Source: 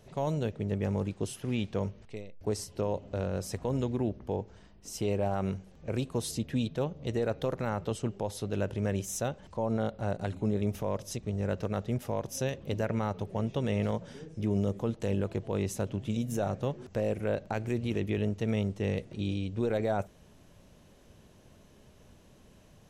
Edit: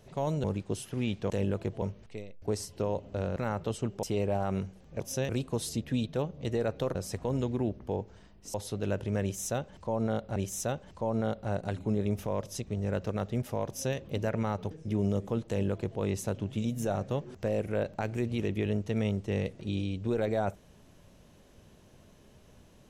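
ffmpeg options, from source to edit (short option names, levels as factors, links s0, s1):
-filter_complex "[0:a]asplit=12[s0][s1][s2][s3][s4][s5][s6][s7][s8][s9][s10][s11];[s0]atrim=end=0.442[s12];[s1]atrim=start=0.948:end=1.812[s13];[s2]atrim=start=14.998:end=15.522[s14];[s3]atrim=start=1.808:end=3.352[s15];[s4]atrim=start=7.568:end=8.242[s16];[s5]atrim=start=4.938:end=5.912[s17];[s6]atrim=start=12.238:end=12.532[s18];[s7]atrim=start=5.908:end=7.572[s19];[s8]atrim=start=3.348:end=4.942[s20];[s9]atrim=start=8.238:end=10.062[s21];[s10]atrim=start=8.918:end=13.272[s22];[s11]atrim=start=14.228[s23];[s12][s13]acrossfade=d=0.004:c1=hsin:c2=hsin[s24];[s24][s14]acrossfade=d=0.004:c1=hsin:c2=hsin[s25];[s25][s15]acrossfade=d=0.004:c1=hsin:c2=hsin[s26];[s26][s16]acrossfade=d=0.004:c1=hsin:c2=hsin[s27];[s27][s17]acrossfade=d=0.004:c1=hsin:c2=hsin[s28];[s28][s18]acrossfade=d=0.004:c1=hsin:c2=hsin[s29];[s29][s19]acrossfade=d=0.004:c1=hsin:c2=hsin[s30];[s30][s20]acrossfade=d=0.004:c1=hsin:c2=hsin[s31];[s31][s21]acrossfade=d=0.004:c1=hsin:c2=hsin[s32];[s32][s22]acrossfade=d=0.004:c1=hsin:c2=hsin[s33];[s33][s23]acrossfade=d=0.004:c1=hsin:c2=hsin"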